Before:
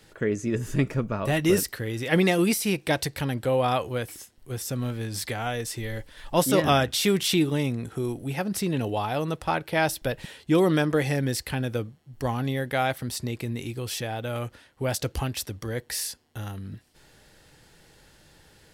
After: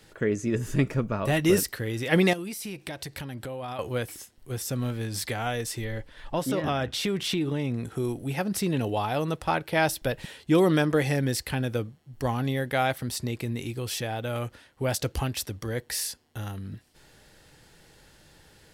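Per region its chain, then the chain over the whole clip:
2.33–3.79 notch 480 Hz, Q 10 + compressor, threshold -33 dBFS
5.84–7.75 high shelf 5500 Hz -12 dB + compressor 5:1, threshold -23 dBFS
whole clip: dry

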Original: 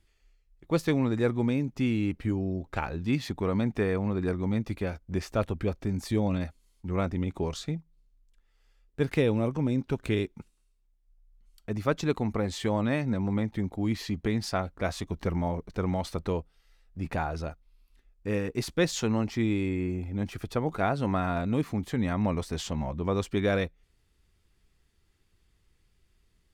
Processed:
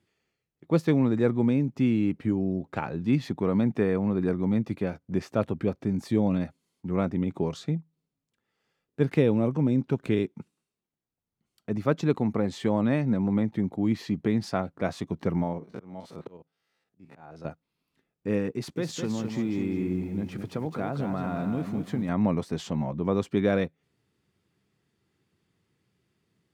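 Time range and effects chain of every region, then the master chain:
15.43–17.45 stepped spectrum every 50 ms + low shelf 170 Hz -7 dB + auto swell 0.569 s
18.51–22.09 compressor 5:1, threshold -28 dBFS + lo-fi delay 0.208 s, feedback 35%, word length 9-bit, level -6 dB
whole clip: HPF 130 Hz 24 dB/oct; tilt -2 dB/oct

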